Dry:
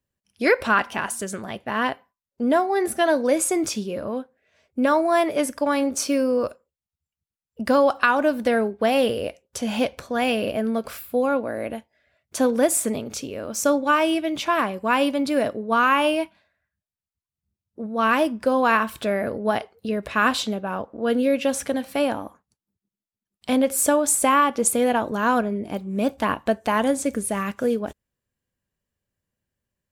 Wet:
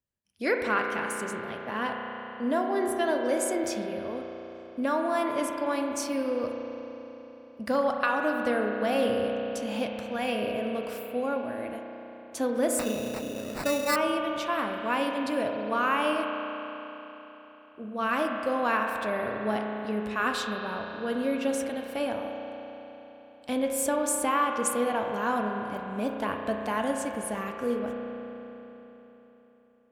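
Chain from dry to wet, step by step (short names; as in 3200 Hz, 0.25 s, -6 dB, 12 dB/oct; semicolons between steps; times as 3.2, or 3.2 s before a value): spring tank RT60 3.8 s, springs 33 ms, chirp 35 ms, DRR 2 dB; 12.79–13.96 sample-rate reducer 3200 Hz, jitter 0%; gain -8.5 dB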